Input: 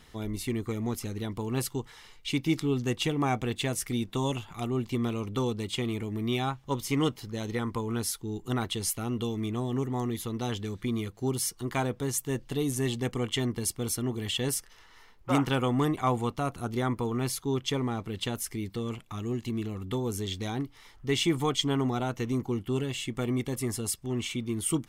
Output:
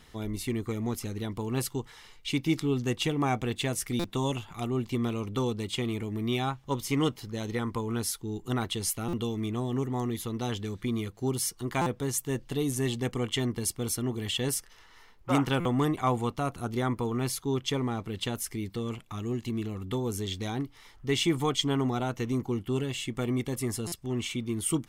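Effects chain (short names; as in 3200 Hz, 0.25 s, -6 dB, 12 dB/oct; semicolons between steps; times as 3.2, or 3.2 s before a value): stuck buffer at 3.99/9.08/11.81/15.6/23.87, samples 256, times 8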